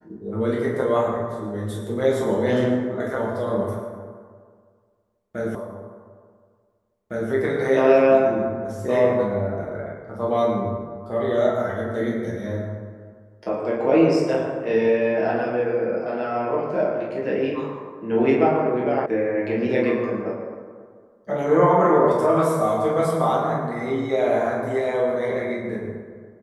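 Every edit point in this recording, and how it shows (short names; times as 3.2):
5.55 repeat of the last 1.76 s
19.06 sound cut off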